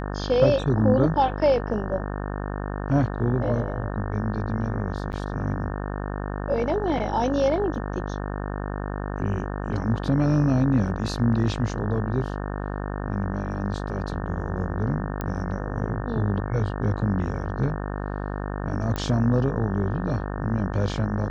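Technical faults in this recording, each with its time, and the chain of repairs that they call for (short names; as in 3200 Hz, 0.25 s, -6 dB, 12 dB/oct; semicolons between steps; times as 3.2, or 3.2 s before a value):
buzz 50 Hz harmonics 36 -30 dBFS
5.12–5.13 gap 9.2 ms
7.75 gap 2.4 ms
15.21 pop -16 dBFS
18.96 pop -15 dBFS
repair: de-click; de-hum 50 Hz, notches 36; interpolate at 5.12, 9.2 ms; interpolate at 7.75, 2.4 ms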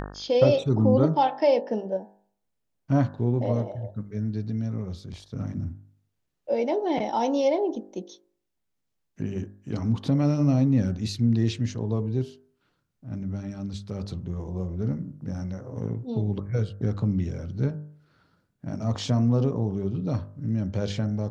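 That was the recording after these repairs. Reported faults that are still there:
none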